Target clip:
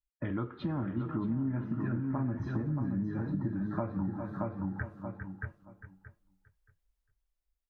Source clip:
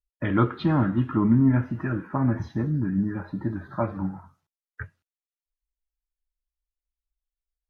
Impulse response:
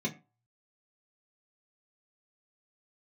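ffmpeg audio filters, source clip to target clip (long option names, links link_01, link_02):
-filter_complex "[0:a]asplit=2[link_01][link_02];[link_02]aecho=0:1:402:0.188[link_03];[link_01][link_03]amix=inputs=2:normalize=0,dynaudnorm=framelen=220:gausssize=11:maxgain=15dB,asplit=2[link_04][link_05];[link_05]aecho=0:1:626|1252|1878:0.473|0.0852|0.0153[link_06];[link_04][link_06]amix=inputs=2:normalize=0,acompressor=threshold=-26dB:ratio=5,tiltshelf=frequency=1400:gain=3.5,volume=-8.5dB"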